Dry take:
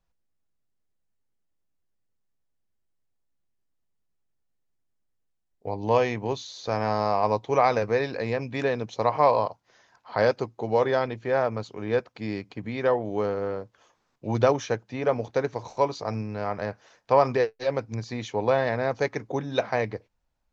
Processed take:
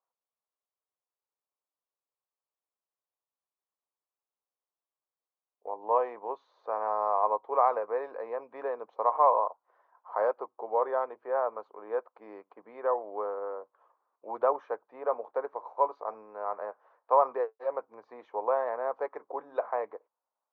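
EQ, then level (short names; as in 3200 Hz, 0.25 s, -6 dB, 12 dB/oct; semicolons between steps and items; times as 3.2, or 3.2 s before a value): ladder high-pass 380 Hz, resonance 30%; synth low-pass 1100 Hz, resonance Q 3.4; -4.0 dB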